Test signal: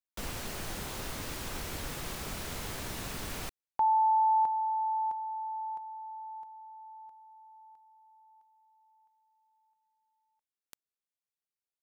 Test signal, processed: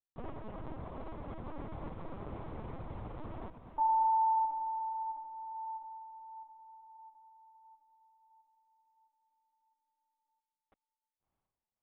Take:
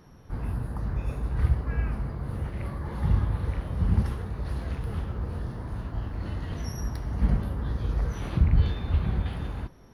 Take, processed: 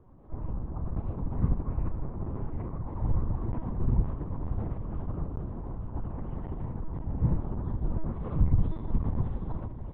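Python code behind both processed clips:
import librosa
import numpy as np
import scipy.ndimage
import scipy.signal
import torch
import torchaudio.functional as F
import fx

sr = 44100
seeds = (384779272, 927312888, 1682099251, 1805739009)

y = scipy.signal.savgol_filter(x, 65, 4, mode='constant')
y = fx.echo_diffused(y, sr, ms=638, feedback_pct=43, wet_db=-10.5)
y = fx.lpc_vocoder(y, sr, seeds[0], excitation='pitch_kept', order=8)
y = F.gain(torch.from_numpy(y), -2.5).numpy()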